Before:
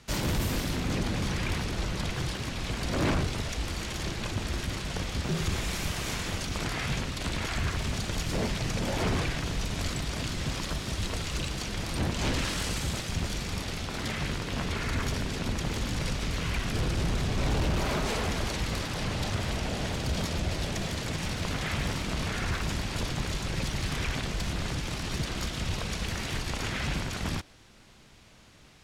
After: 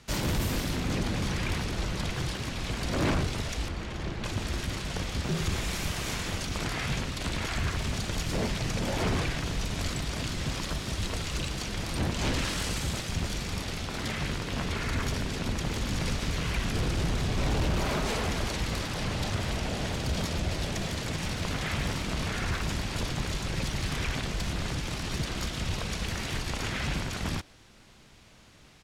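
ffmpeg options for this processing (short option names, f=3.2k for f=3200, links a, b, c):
-filter_complex "[0:a]asettb=1/sr,asplit=3[a][b][c];[a]atrim=end=3.684[d];[b]atrim=start=3.68:end=4.24,asetpts=PTS-STARTPTS,afade=t=in:d=0.004:c=qsin,afade=t=out:st=0.556:d=0.004:c=qsin,lowpass=f=1.8k:p=1[e];[c]atrim=start=4.236[f];[d][e]acrossfade=d=0.004:c1=hsin:c2=qsin[g];[g][f]acrossfade=d=0.004:c1=qsin:c2=hsin,asplit=2[h][i];[i]afade=t=in:st=15.51:d=0.01,afade=t=out:st=15.93:d=0.01,aecho=0:1:370|740|1110|1480|1850|2220|2590|2960|3330|3700|4070|4440:0.446684|0.357347|0.285877|0.228702|0.182962|0.146369|0.117095|0.0936763|0.0749411|0.0599529|0.0479623|0.0383698[j];[h][j]amix=inputs=2:normalize=0"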